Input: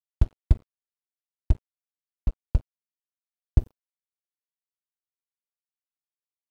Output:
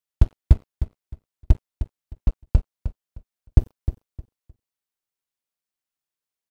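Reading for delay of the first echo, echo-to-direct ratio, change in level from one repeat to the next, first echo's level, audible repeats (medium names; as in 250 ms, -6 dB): 308 ms, -10.5 dB, -13.0 dB, -10.5 dB, 2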